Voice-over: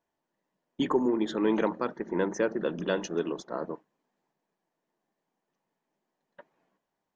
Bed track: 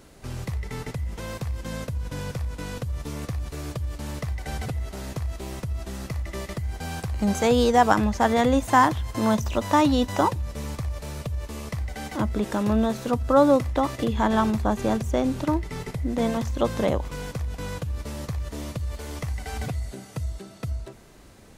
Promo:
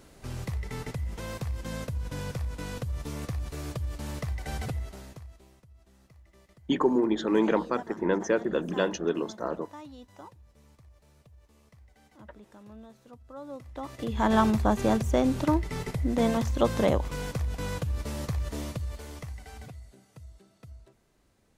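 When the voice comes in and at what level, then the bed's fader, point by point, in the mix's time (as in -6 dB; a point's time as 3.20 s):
5.90 s, +2.0 dB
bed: 4.75 s -3 dB
5.61 s -26 dB
13.41 s -26 dB
14.32 s -0.5 dB
18.56 s -0.5 dB
19.93 s -17.5 dB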